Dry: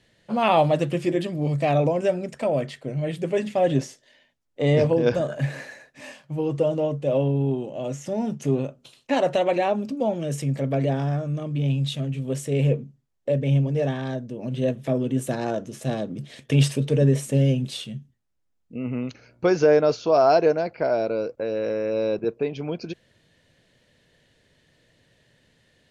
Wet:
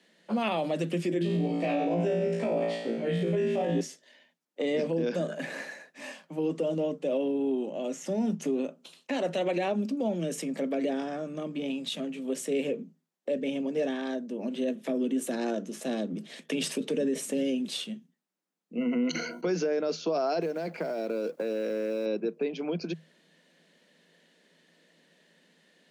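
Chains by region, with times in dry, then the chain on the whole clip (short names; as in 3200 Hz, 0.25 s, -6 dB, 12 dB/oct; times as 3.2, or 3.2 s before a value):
1.19–3.81 LPF 2800 Hz 6 dB/oct + flutter echo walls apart 3 m, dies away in 0.78 s
18.77–19.46 ripple EQ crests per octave 1.9, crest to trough 17 dB + sustainer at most 49 dB/s
20.41–22.06 G.711 law mismatch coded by mu + compressor 10:1, threshold -24 dBFS
whole clip: Chebyshev high-pass 160 Hz, order 10; dynamic EQ 930 Hz, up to -8 dB, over -37 dBFS, Q 0.98; limiter -20.5 dBFS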